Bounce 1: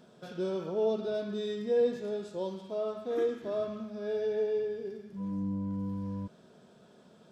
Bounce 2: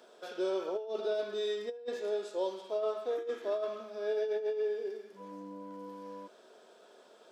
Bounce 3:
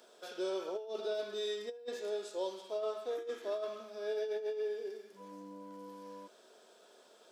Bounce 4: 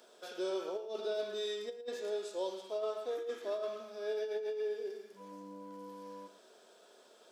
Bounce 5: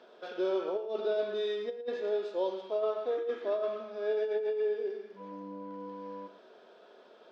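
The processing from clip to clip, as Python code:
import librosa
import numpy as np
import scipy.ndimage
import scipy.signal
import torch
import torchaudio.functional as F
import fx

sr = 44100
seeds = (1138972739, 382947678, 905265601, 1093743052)

y1 = scipy.signal.sosfilt(scipy.signal.butter(4, 370.0, 'highpass', fs=sr, output='sos'), x)
y1 = fx.over_compress(y1, sr, threshold_db=-33.0, ratio=-0.5)
y1 = y1 * 10.0 ** (1.0 / 20.0)
y2 = fx.high_shelf(y1, sr, hz=3800.0, db=9.0)
y2 = y2 * 10.0 ** (-4.0 / 20.0)
y3 = y2 + 10.0 ** (-13.5 / 20.0) * np.pad(y2, (int(113 * sr / 1000.0), 0))[:len(y2)]
y4 = fx.air_absorb(y3, sr, metres=290.0)
y4 = y4 * 10.0 ** (6.5 / 20.0)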